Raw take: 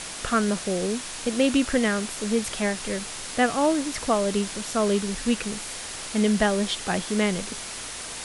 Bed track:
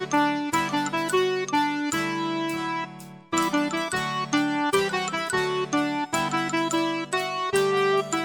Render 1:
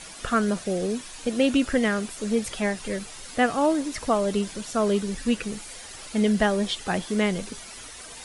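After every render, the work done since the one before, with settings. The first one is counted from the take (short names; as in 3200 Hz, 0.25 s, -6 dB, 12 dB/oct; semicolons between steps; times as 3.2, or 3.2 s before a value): denoiser 10 dB, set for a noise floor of -36 dBFS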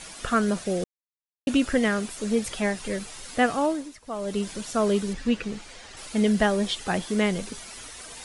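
0.84–1.47 mute; 3.52–4.51 dip -19.5 dB, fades 0.48 s; 5.13–5.97 air absorption 89 m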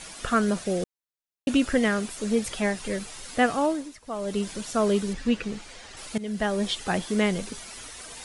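6.18–6.69 fade in, from -18.5 dB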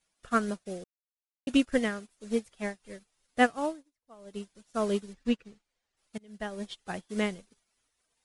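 upward expander 2.5:1, over -44 dBFS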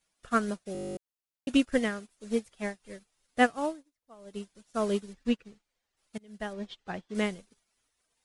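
0.73 stutter in place 0.02 s, 12 plays; 6.53–7.15 air absorption 120 m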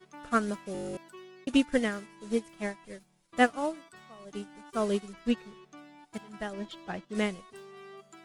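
add bed track -26.5 dB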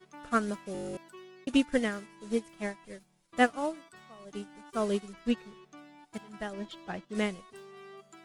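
gain -1 dB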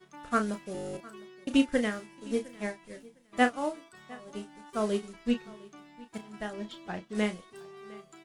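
doubler 33 ms -9 dB; feedback echo 0.707 s, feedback 18%, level -22 dB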